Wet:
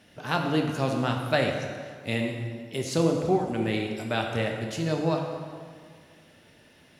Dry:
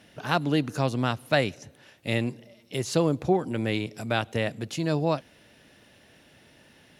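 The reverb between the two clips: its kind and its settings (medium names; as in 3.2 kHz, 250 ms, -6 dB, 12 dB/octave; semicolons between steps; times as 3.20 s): plate-style reverb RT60 1.9 s, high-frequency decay 0.7×, DRR 1.5 dB; trim -2.5 dB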